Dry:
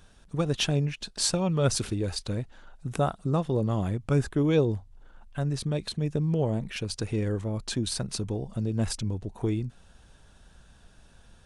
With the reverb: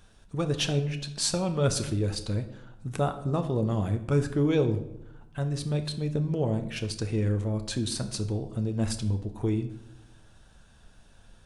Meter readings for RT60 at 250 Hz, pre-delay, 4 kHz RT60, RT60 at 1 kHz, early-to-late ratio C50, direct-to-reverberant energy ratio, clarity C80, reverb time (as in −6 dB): 1.2 s, 9 ms, 0.60 s, 0.80 s, 12.0 dB, 7.0 dB, 14.5 dB, 0.85 s